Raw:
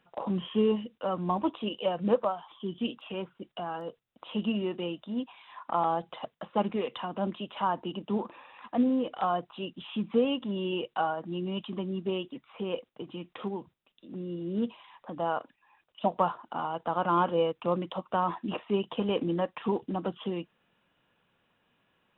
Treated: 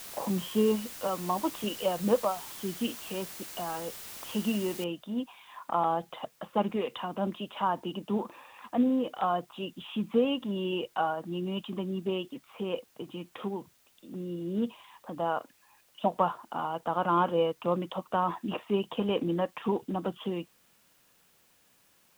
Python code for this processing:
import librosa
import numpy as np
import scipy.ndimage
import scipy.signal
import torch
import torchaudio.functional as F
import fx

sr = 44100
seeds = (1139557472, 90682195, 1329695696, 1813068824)

y = fx.highpass(x, sr, hz=270.0, slope=6, at=(1.07, 1.64))
y = fx.noise_floor_step(y, sr, seeds[0], at_s=4.84, before_db=-44, after_db=-66, tilt_db=0.0)